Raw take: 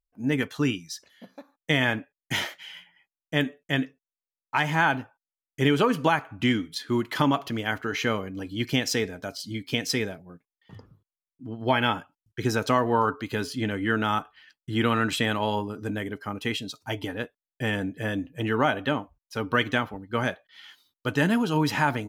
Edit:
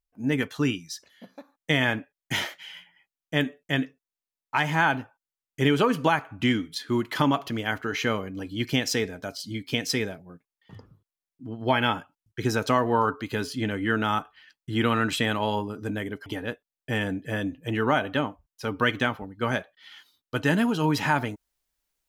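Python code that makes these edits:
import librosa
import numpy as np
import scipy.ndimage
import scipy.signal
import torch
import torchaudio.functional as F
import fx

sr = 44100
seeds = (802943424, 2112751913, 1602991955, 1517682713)

y = fx.edit(x, sr, fx.cut(start_s=16.26, length_s=0.72), tone=tone)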